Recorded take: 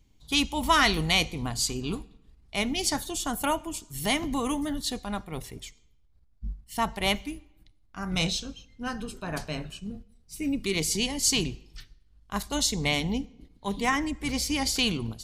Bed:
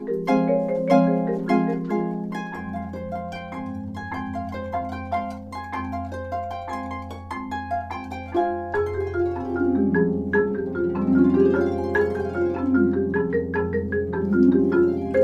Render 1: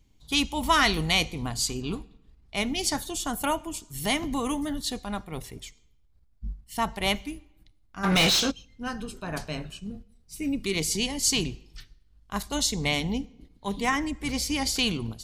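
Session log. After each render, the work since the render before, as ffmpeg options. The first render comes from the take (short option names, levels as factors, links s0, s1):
-filter_complex "[0:a]asettb=1/sr,asplit=3[s0][s1][s2];[s0]atrim=end=1.824[s3];[s1]atrim=start=1.82:end=2.57,asetpts=PTS-STARTPTS,afade=t=in:d=0.004:c=qsin,afade=t=out:st=0.746:d=0.004:c=qsin,equalizer=f=11000:w=0.57:g=-5[s4];[s2]atrim=start=2.566[s5];[s3][s4]acrossfade=d=0.004:c1=hsin:c2=qsin[s6];[s6][s5]acrossfade=d=0.004:c1=qsin:c2=hsin,asplit=3[s7][s8][s9];[s7]afade=t=out:st=8.03:d=0.02[s10];[s8]asplit=2[s11][s12];[s12]highpass=f=720:p=1,volume=28.2,asoftclip=type=tanh:threshold=0.224[s13];[s11][s13]amix=inputs=2:normalize=0,lowpass=f=4800:p=1,volume=0.501,afade=t=in:st=8.03:d=0.02,afade=t=out:st=8.5:d=0.02[s14];[s9]afade=t=in:st=8.5:d=0.02[s15];[s10][s14][s15]amix=inputs=3:normalize=0"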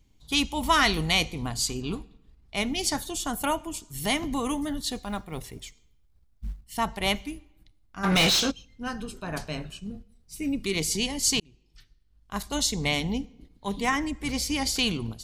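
-filter_complex "[0:a]asettb=1/sr,asplit=3[s0][s1][s2];[s0]atrim=end=4.964[s3];[s1]atrim=start=4.96:end=6.63,asetpts=PTS-STARTPTS,afade=t=in:d=0.004:c=qsin,afade=t=out:st=1.666:d=0.004:c=qsin,acrusher=bits=8:mode=log:mix=0:aa=0.000001[s4];[s2]atrim=start=6.626[s5];[s3][s4]acrossfade=d=0.004:c1=hsin:c2=qsin[s6];[s6][s5]acrossfade=d=0.004:c1=qsin:c2=hsin,asplit=2[s7][s8];[s7]atrim=end=11.4,asetpts=PTS-STARTPTS,afade=t=out:st=11.396:d=0.004:c=hsin[s9];[s8]atrim=start=11.4,asetpts=PTS-STARTPTS,afade=t=in:d=1.12[s10];[s9][s10]concat=n=2:v=0:a=1"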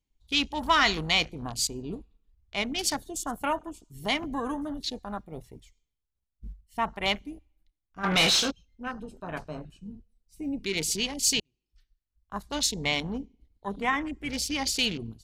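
-af "afwtdn=0.0141,lowshelf=f=290:g=-7"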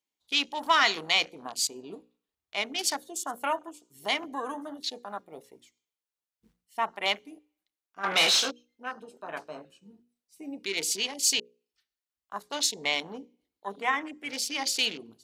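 -af "highpass=390,bandreject=f=60:t=h:w=6,bandreject=f=120:t=h:w=6,bandreject=f=180:t=h:w=6,bandreject=f=240:t=h:w=6,bandreject=f=300:t=h:w=6,bandreject=f=360:t=h:w=6,bandreject=f=420:t=h:w=6,bandreject=f=480:t=h:w=6,bandreject=f=540:t=h:w=6"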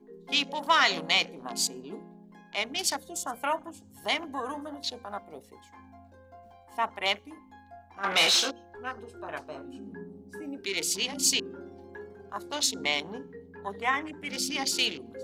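-filter_complex "[1:a]volume=0.0708[s0];[0:a][s0]amix=inputs=2:normalize=0"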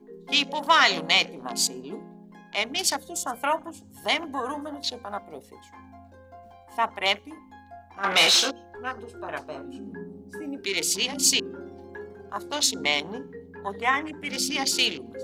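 -af "volume=1.58"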